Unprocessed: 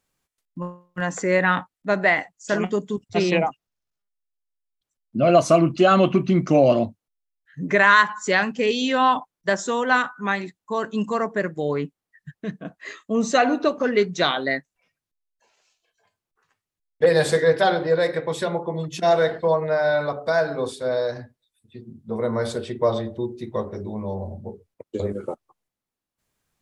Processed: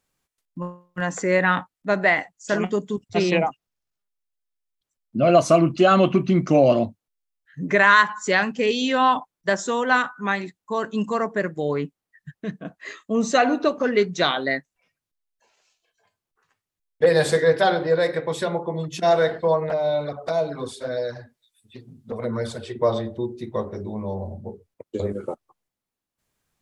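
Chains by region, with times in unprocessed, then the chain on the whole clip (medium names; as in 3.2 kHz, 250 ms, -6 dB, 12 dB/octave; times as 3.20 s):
19.69–22.75 s: touch-sensitive flanger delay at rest 10.6 ms, full sweep at -18 dBFS + tape noise reduction on one side only encoder only
whole clip: none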